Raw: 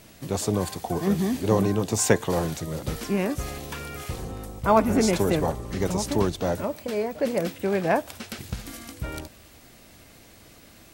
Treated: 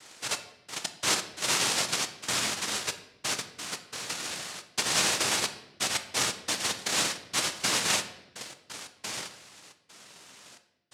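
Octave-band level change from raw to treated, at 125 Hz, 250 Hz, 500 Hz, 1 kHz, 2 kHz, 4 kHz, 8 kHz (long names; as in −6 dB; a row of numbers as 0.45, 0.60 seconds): −17.5, −17.0, −15.0, −6.0, +3.5, +9.5, +5.0 decibels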